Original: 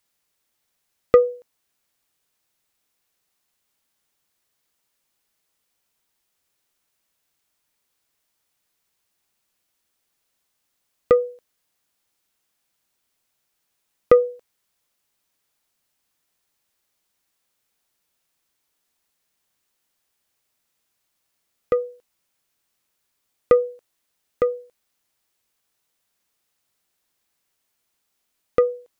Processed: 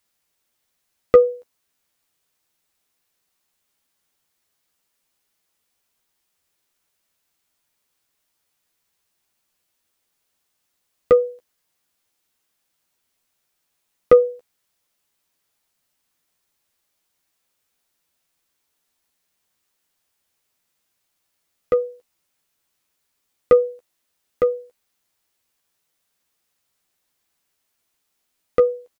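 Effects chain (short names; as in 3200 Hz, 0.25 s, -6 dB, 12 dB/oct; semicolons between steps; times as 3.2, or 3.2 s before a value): doubler 12 ms -7 dB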